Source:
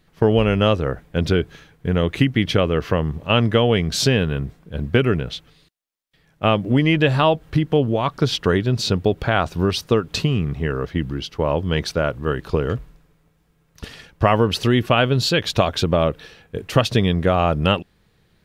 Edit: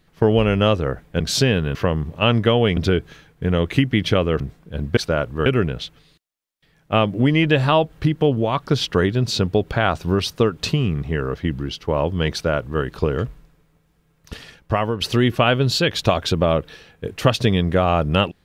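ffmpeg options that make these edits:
ffmpeg -i in.wav -filter_complex "[0:a]asplit=8[link_01][link_02][link_03][link_04][link_05][link_06][link_07][link_08];[link_01]atrim=end=1.202[link_09];[link_02]atrim=start=3.848:end=4.402[link_10];[link_03]atrim=start=2.828:end=3.852[link_11];[link_04]atrim=start=1.198:end=2.832[link_12];[link_05]atrim=start=4.398:end=4.972[link_13];[link_06]atrim=start=11.838:end=12.332[link_14];[link_07]atrim=start=4.968:end=14.52,asetpts=PTS-STARTPTS,afade=type=out:start_time=8.892:duration=0.66:silence=0.398107[link_15];[link_08]atrim=start=14.52,asetpts=PTS-STARTPTS,afade=type=in:duration=0.004:curve=hsin:silence=0.398107[link_16];[link_09][link_10]acrossfade=duration=0.004:curve1=hsin:curve2=hsin[link_17];[link_17][link_11]acrossfade=duration=0.004:curve1=hsin:curve2=hsin[link_18];[link_18][link_12]acrossfade=duration=0.004:curve1=hsin:curve2=hsin[link_19];[link_19][link_13]acrossfade=duration=0.004:curve1=hsin:curve2=hsin[link_20];[link_20][link_14]acrossfade=duration=0.004:curve1=hsin:curve2=hsin[link_21];[link_15][link_16]concat=n=2:v=0:a=1[link_22];[link_21][link_22]acrossfade=duration=0.004:curve1=hsin:curve2=hsin" out.wav

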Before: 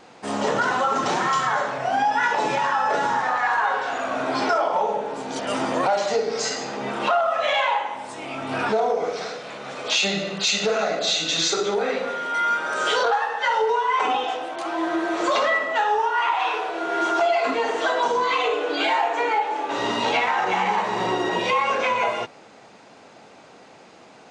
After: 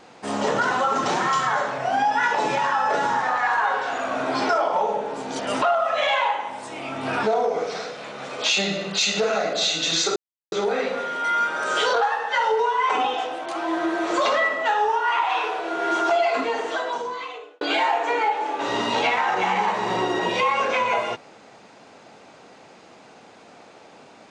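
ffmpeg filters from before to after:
ffmpeg -i in.wav -filter_complex "[0:a]asplit=4[link_01][link_02][link_03][link_04];[link_01]atrim=end=5.622[link_05];[link_02]atrim=start=7.078:end=11.62,asetpts=PTS-STARTPTS,afade=type=out:start_time=4.538:duration=0.004:curve=hsin,apad=pad_dur=0.36[link_06];[link_03]atrim=start=11.62:end=18.71,asetpts=PTS-STARTPTS,afade=type=in:duration=0.004:curve=hsin,afade=type=out:start_time=5.75:duration=1.34[link_07];[link_04]atrim=start=18.71,asetpts=PTS-STARTPTS,afade=type=in:duration=0.004:curve=hsin[link_08];[link_06][link_07][link_08]concat=n=3:v=0:a=1[link_09];[link_05][link_09]acrossfade=duration=0.004:curve1=hsin:curve2=hsin" out.wav

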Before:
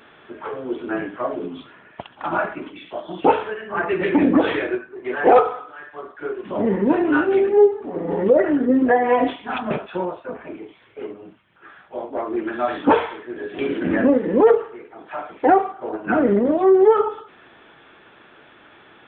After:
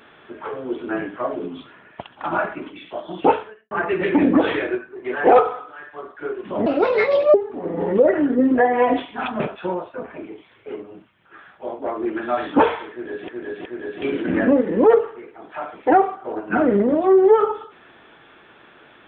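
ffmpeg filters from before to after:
ffmpeg -i in.wav -filter_complex "[0:a]asplit=6[link_01][link_02][link_03][link_04][link_05][link_06];[link_01]atrim=end=3.71,asetpts=PTS-STARTPTS,afade=type=out:start_time=3.29:duration=0.42:curve=qua[link_07];[link_02]atrim=start=3.71:end=6.664,asetpts=PTS-STARTPTS,afade=type=in:duration=0.004:curve=hsin[link_08];[link_03]atrim=start=6.66:end=7.65,asetpts=PTS-STARTPTS,asetrate=63945,aresample=44100[link_09];[link_04]atrim=start=7.646:end=13.592[link_10];[link_05]atrim=start=13.218:end=13.592[link_11];[link_06]atrim=start=13.218[link_12];[link_07][link_08]concat=n=2:v=0:a=1[link_13];[link_13][link_09]acrossfade=duration=0.004:curve1=hsin:curve2=hsin[link_14];[link_14][link_10]acrossfade=duration=0.004:curve1=hsin:curve2=hsin[link_15];[link_15][link_11]acrossfade=duration=0.004:curve1=hsin:curve2=hsin[link_16];[link_16][link_12]acrossfade=duration=0.004:curve1=hsin:curve2=hsin" out.wav

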